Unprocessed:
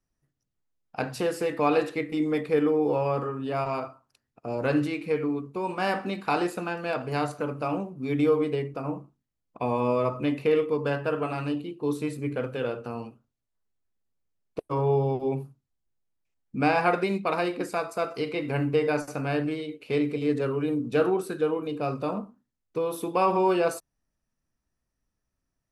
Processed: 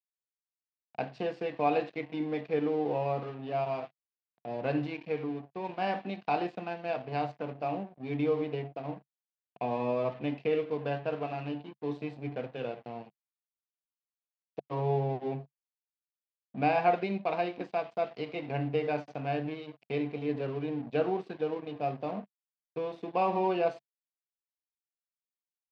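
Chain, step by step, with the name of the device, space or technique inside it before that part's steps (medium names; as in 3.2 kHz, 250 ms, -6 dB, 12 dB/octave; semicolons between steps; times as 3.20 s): blown loudspeaker (crossover distortion -41 dBFS; cabinet simulation 130–4400 Hz, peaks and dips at 140 Hz +5 dB, 200 Hz +4 dB, 700 Hz +9 dB, 1.3 kHz -7 dB, 2.6 kHz +3 dB); trim -6.5 dB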